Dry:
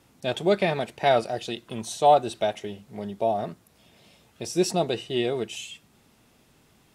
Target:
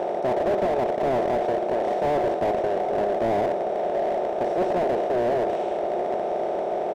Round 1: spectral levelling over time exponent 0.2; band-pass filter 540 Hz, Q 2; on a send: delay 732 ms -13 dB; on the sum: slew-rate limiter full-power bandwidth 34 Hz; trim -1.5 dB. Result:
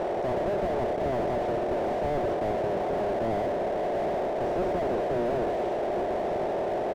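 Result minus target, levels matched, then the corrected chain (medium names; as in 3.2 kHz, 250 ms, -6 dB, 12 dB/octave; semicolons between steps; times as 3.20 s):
slew-rate limiter: distortion +7 dB
spectral levelling over time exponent 0.2; band-pass filter 540 Hz, Q 2; on a send: delay 732 ms -13 dB; on the sum: slew-rate limiter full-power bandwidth 70 Hz; trim -1.5 dB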